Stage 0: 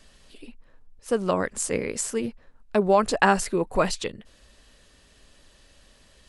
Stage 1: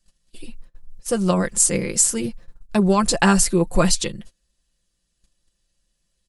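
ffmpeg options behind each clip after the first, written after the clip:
ffmpeg -i in.wav -af "bass=frequency=250:gain=9,treble=frequency=4000:gain=12,agate=range=-25dB:threshold=-40dB:ratio=16:detection=peak,aecho=1:1:5.8:0.65" out.wav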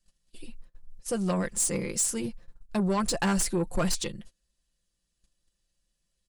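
ffmpeg -i in.wav -af "asoftclip=type=tanh:threshold=-14dB,volume=-6.5dB" out.wav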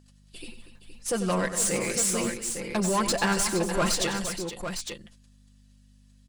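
ffmpeg -i in.wav -filter_complex "[0:a]aeval=exprs='val(0)+0.00224*(sin(2*PI*50*n/s)+sin(2*PI*2*50*n/s)/2+sin(2*PI*3*50*n/s)/3+sin(2*PI*4*50*n/s)/4+sin(2*PI*5*50*n/s)/5)':channel_layout=same,asplit=2[link_01][link_02];[link_02]highpass=frequency=720:poles=1,volume=14dB,asoftclip=type=tanh:threshold=-20dB[link_03];[link_01][link_03]amix=inputs=2:normalize=0,lowpass=frequency=7900:poles=1,volume=-6dB,asplit=2[link_04][link_05];[link_05]aecho=0:1:94|102|238|469|856:0.266|0.126|0.224|0.282|0.422[link_06];[link_04][link_06]amix=inputs=2:normalize=0,volume=1dB" out.wav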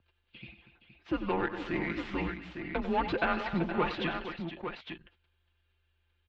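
ffmpeg -i in.wav -af "highpass=frequency=270:width_type=q:width=0.5412,highpass=frequency=270:width_type=q:width=1.307,lowpass=frequency=3400:width_type=q:width=0.5176,lowpass=frequency=3400:width_type=q:width=0.7071,lowpass=frequency=3400:width_type=q:width=1.932,afreqshift=-170,volume=-2.5dB" out.wav

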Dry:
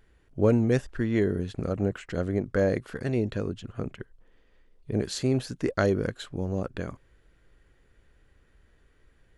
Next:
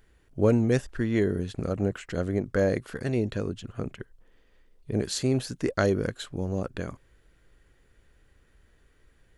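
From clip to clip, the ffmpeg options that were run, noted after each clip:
ffmpeg -i in.wav -af "highshelf=frequency=5400:gain=6" out.wav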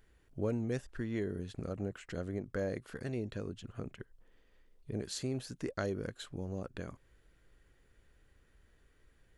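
ffmpeg -i in.wav -af "acompressor=threshold=-39dB:ratio=1.5,volume=-5dB" out.wav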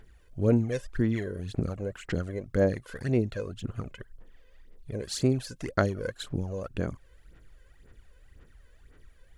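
ffmpeg -i in.wav -af "aphaser=in_gain=1:out_gain=1:delay=2:decay=0.66:speed=1.9:type=sinusoidal,volume=4dB" out.wav

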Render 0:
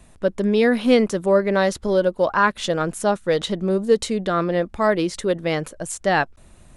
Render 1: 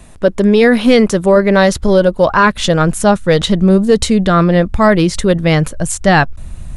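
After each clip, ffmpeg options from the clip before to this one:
ffmpeg -i in.wav -af "asubboost=boost=4.5:cutoff=170,apsyclip=12dB,volume=-2dB" out.wav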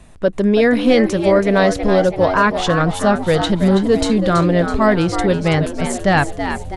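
ffmpeg -i in.wav -filter_complex "[0:a]highshelf=frequency=8700:gain=-9,asplit=2[link_01][link_02];[link_02]asplit=6[link_03][link_04][link_05][link_06][link_07][link_08];[link_03]adelay=328,afreqshift=87,volume=-8.5dB[link_09];[link_04]adelay=656,afreqshift=174,volume=-14dB[link_10];[link_05]adelay=984,afreqshift=261,volume=-19.5dB[link_11];[link_06]adelay=1312,afreqshift=348,volume=-25dB[link_12];[link_07]adelay=1640,afreqshift=435,volume=-30.6dB[link_13];[link_08]adelay=1968,afreqshift=522,volume=-36.1dB[link_14];[link_09][link_10][link_11][link_12][link_13][link_14]amix=inputs=6:normalize=0[link_15];[link_01][link_15]amix=inputs=2:normalize=0,volume=-4.5dB" out.wav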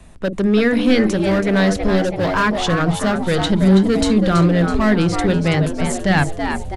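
ffmpeg -i in.wav -filter_complex "[0:a]acrossover=split=330|1300[link_01][link_02][link_03];[link_01]asplit=2[link_04][link_05];[link_05]adelay=47,volume=-4dB[link_06];[link_04][link_06]amix=inputs=2:normalize=0[link_07];[link_02]volume=21.5dB,asoftclip=hard,volume=-21.5dB[link_08];[link_07][link_08][link_03]amix=inputs=3:normalize=0" out.wav

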